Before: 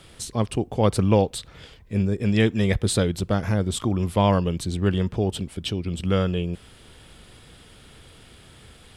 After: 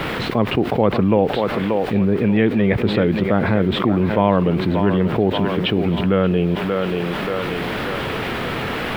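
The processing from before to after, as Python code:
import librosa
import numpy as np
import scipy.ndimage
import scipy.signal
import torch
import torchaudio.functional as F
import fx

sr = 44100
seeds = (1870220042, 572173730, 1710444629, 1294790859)

p1 = fx.bandpass_edges(x, sr, low_hz=170.0, high_hz=3400.0)
p2 = fx.peak_eq(p1, sr, hz=2200.0, db=3.0, octaves=0.77)
p3 = fx.quant_dither(p2, sr, seeds[0], bits=6, dither='triangular')
p4 = p2 + F.gain(torch.from_numpy(p3), -6.0).numpy()
p5 = fx.air_absorb(p4, sr, metres=470.0)
p6 = p5 + fx.echo_thinned(p5, sr, ms=582, feedback_pct=45, hz=290.0, wet_db=-11, dry=0)
y = fx.env_flatten(p6, sr, amount_pct=70)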